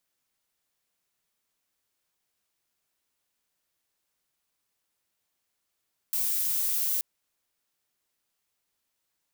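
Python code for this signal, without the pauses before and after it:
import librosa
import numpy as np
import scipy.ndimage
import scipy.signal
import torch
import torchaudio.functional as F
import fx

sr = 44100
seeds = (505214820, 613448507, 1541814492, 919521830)

y = fx.noise_colour(sr, seeds[0], length_s=0.88, colour='violet', level_db=-27.5)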